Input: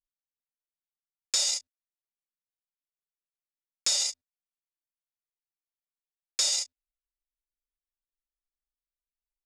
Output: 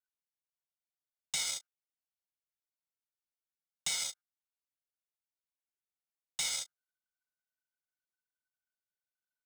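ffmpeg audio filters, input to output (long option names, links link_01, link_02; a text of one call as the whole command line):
ffmpeg -i in.wav -af "aeval=exprs='val(0)*sin(2*PI*1500*n/s)':channel_layout=same,aecho=1:1:1.4:0.61,acrusher=bits=3:mode=log:mix=0:aa=0.000001,volume=-6dB" out.wav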